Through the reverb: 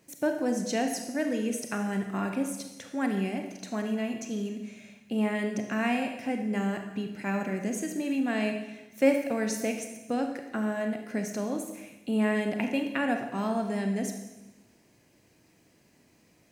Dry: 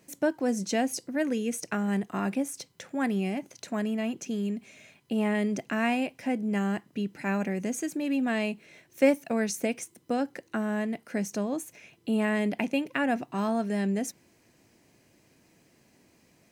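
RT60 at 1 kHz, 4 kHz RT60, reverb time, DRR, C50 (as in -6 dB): 1.0 s, 1.0 s, 1.0 s, 4.5 dB, 6.0 dB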